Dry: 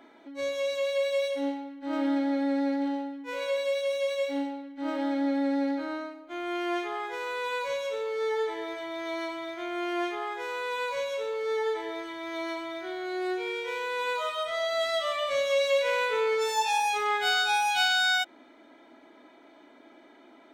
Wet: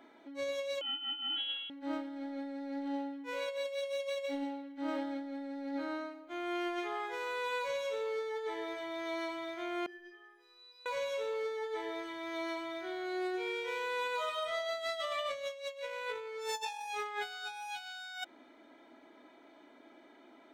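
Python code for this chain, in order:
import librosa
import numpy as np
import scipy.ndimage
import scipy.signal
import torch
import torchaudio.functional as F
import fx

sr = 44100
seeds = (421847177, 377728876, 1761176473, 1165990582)

y = fx.over_compress(x, sr, threshold_db=-30.0, ratio=-0.5)
y = fx.freq_invert(y, sr, carrier_hz=3600, at=(0.81, 1.7))
y = fx.stiff_resonator(y, sr, f0_hz=360.0, decay_s=0.53, stiffness=0.03, at=(9.86, 10.86))
y = y * librosa.db_to_amplitude(-6.5)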